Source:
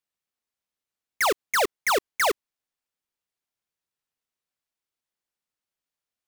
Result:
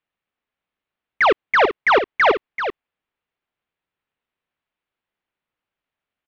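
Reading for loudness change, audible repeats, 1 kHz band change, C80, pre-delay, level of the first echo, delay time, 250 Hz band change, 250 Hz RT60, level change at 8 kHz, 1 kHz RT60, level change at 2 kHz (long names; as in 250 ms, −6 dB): +6.5 dB, 1, +8.5 dB, no reverb audible, no reverb audible, −9.0 dB, 386 ms, +8.5 dB, no reverb audible, below −15 dB, no reverb audible, +8.5 dB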